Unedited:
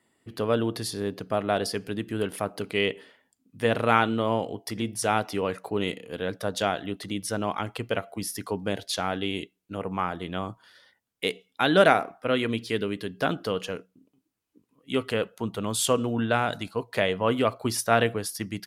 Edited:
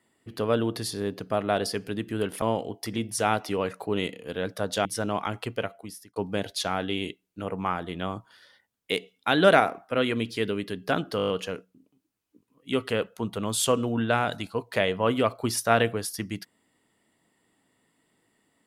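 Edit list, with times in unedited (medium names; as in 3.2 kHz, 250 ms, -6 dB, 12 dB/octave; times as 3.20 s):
2.42–4.26 s: delete
6.69–7.18 s: delete
7.79–8.49 s: fade out
13.50 s: stutter 0.02 s, 7 plays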